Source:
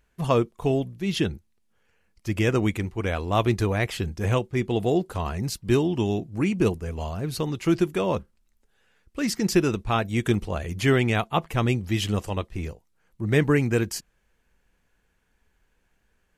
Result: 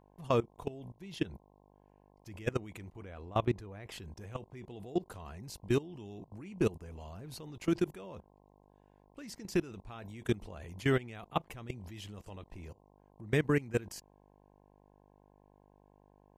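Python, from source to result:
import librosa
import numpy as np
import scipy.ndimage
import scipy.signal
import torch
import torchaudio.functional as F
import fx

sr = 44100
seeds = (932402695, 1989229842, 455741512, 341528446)

y = fx.dmg_buzz(x, sr, base_hz=50.0, harmonics=21, level_db=-48.0, tilt_db=-2, odd_only=False)
y = fx.level_steps(y, sr, step_db=20)
y = fx.high_shelf(y, sr, hz=2800.0, db=-9.5, at=(3.02, 3.92))
y = F.gain(torch.from_numpy(y), -6.0).numpy()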